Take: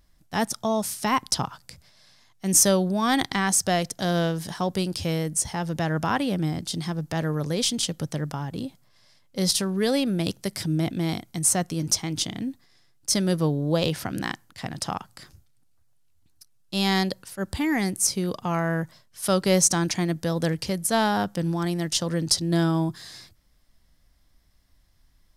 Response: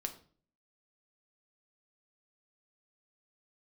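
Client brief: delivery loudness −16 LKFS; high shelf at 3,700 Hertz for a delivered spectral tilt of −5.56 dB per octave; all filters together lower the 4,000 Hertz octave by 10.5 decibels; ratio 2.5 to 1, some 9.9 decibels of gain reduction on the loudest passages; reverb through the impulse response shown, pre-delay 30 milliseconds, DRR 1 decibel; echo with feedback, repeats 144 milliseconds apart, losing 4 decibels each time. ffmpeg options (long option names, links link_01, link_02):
-filter_complex "[0:a]highshelf=frequency=3700:gain=-8.5,equalizer=frequency=4000:width_type=o:gain=-8,acompressor=threshold=-33dB:ratio=2.5,aecho=1:1:144|288|432|576|720|864|1008|1152|1296:0.631|0.398|0.25|0.158|0.0994|0.0626|0.0394|0.0249|0.0157,asplit=2[link_01][link_02];[1:a]atrim=start_sample=2205,adelay=30[link_03];[link_02][link_03]afir=irnorm=-1:irlink=0,volume=-0.5dB[link_04];[link_01][link_04]amix=inputs=2:normalize=0,volume=13.5dB"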